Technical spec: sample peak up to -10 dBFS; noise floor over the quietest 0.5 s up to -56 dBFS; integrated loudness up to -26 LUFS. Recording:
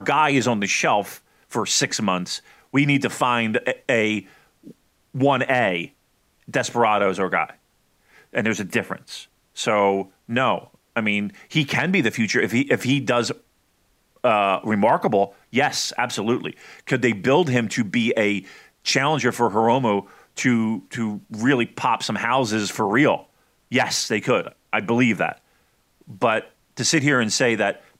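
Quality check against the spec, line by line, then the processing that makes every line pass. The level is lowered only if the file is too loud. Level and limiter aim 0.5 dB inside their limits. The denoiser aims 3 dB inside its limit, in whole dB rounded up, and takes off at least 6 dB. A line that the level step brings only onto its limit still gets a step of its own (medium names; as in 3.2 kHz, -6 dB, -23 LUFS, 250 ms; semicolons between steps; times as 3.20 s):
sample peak -6.5 dBFS: fail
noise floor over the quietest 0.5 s -64 dBFS: pass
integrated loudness -21.5 LUFS: fail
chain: trim -5 dB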